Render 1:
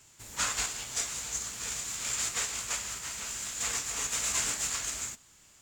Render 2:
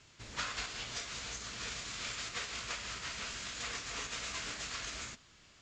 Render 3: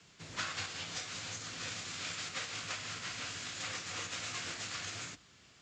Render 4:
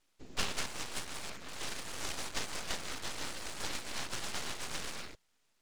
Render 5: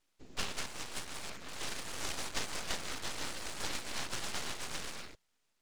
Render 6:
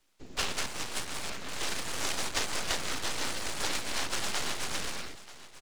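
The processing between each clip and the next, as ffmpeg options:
ffmpeg -i in.wav -af "acompressor=threshold=-34dB:ratio=6,lowpass=frequency=5200:width=0.5412,lowpass=frequency=5200:width=1.3066,equalizer=frequency=870:width_type=o:width=0.25:gain=-5.5,volume=2dB" out.wav
ffmpeg -i in.wav -af "afreqshift=49" out.wav
ffmpeg -i in.wav -af "afwtdn=0.00562,aeval=exprs='0.0631*(cos(1*acos(clip(val(0)/0.0631,-1,1)))-cos(1*PI/2))+0.00251*(cos(7*acos(clip(val(0)/0.0631,-1,1)))-cos(7*PI/2))':channel_layout=same,aeval=exprs='abs(val(0))':channel_layout=same,volume=7dB" out.wav
ffmpeg -i in.wav -af "dynaudnorm=framelen=250:gausssize=9:maxgain=3.5dB,volume=-3dB" out.wav
ffmpeg -i in.wav -filter_complex "[0:a]acrossover=split=180|450|4000[link_01][link_02][link_03][link_04];[link_01]aeval=exprs='0.0126*(abs(mod(val(0)/0.0126+3,4)-2)-1)':channel_layout=same[link_05];[link_05][link_02][link_03][link_04]amix=inputs=4:normalize=0,aecho=1:1:935:0.141,volume=6.5dB" out.wav

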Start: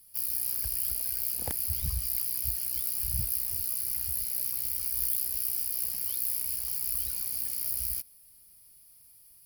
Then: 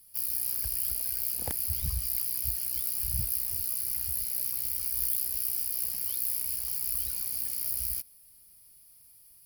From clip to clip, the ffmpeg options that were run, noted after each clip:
ffmpeg -i in.wav -af anull out.wav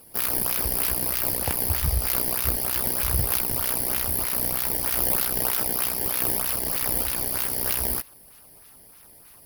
ffmpeg -i in.wav -filter_complex "[0:a]bandreject=frequency=7000:width=7,asplit=2[link_01][link_02];[link_02]acrusher=samples=20:mix=1:aa=0.000001:lfo=1:lforange=32:lforate=3.2,volume=-8dB[link_03];[link_01][link_03]amix=inputs=2:normalize=0,volume=5.5dB" out.wav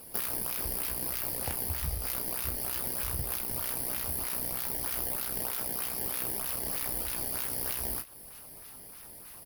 ffmpeg -i in.wav -filter_complex "[0:a]acompressor=threshold=-32dB:ratio=6,asplit=2[link_01][link_02];[link_02]aecho=0:1:24|39:0.335|0.188[link_03];[link_01][link_03]amix=inputs=2:normalize=0,volume=1.5dB" out.wav

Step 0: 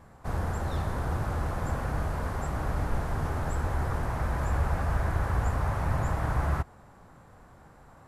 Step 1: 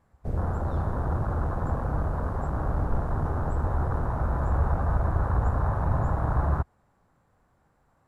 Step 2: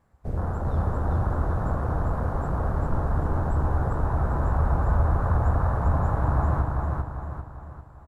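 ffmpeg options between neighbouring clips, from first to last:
ffmpeg -i in.wav -af "afwtdn=0.0251,volume=3dB" out.wav
ffmpeg -i in.wav -af "aecho=1:1:396|792|1188|1584|1980|2376:0.708|0.319|0.143|0.0645|0.029|0.0131" out.wav

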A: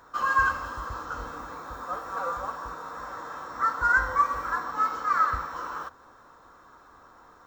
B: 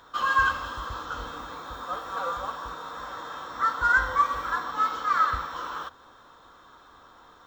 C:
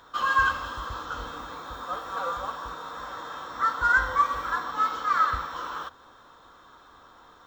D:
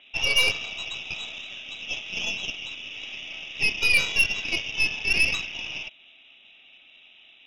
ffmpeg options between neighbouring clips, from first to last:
ffmpeg -i in.wav -af "equalizer=frequency=3400:width_type=o:width=0.49:gain=14.5" out.wav
ffmpeg -i in.wav -af anull out.wav
ffmpeg -i in.wav -af "lowpass=frequency=3300:width_type=q:width=0.5098,lowpass=frequency=3300:width_type=q:width=0.6013,lowpass=frequency=3300:width_type=q:width=0.9,lowpass=frequency=3300:width_type=q:width=2.563,afreqshift=-3900,aeval=exprs='0.299*(cos(1*acos(clip(val(0)/0.299,-1,1)))-cos(1*PI/2))+0.0473*(cos(6*acos(clip(val(0)/0.299,-1,1)))-cos(6*PI/2))':channel_layout=same" out.wav

